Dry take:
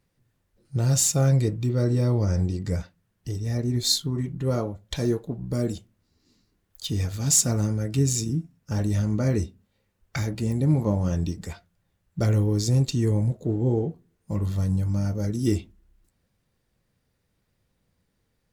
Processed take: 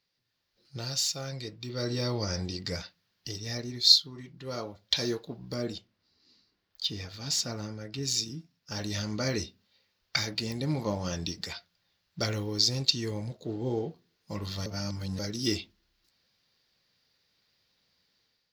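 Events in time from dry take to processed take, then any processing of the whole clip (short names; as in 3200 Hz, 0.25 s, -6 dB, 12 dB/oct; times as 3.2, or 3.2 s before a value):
5.54–8.03 high shelf 2900 Hz -10.5 dB
14.66–15.19 reverse
whole clip: tilt +3.5 dB/oct; AGC gain up to 8 dB; resonant high shelf 6400 Hz -12 dB, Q 3; gain -8.5 dB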